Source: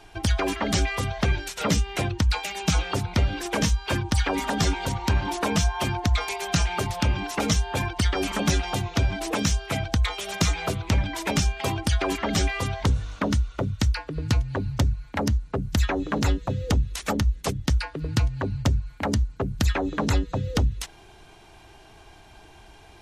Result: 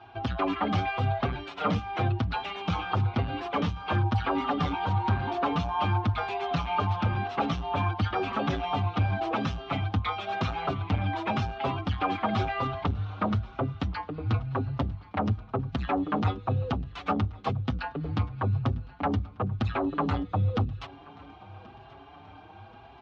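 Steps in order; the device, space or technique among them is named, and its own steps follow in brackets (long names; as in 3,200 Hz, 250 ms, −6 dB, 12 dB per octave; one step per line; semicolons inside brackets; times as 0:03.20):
barber-pole flanger into a guitar amplifier (barber-pole flanger 5.8 ms +0.97 Hz; soft clipping −22 dBFS, distortion −13 dB; loudspeaker in its box 95–3,500 Hz, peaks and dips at 100 Hz +10 dB, 250 Hz +4 dB, 770 Hz +8 dB, 1,200 Hz +9 dB, 1,900 Hz −5 dB)
repeating echo 1,081 ms, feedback 55%, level −23 dB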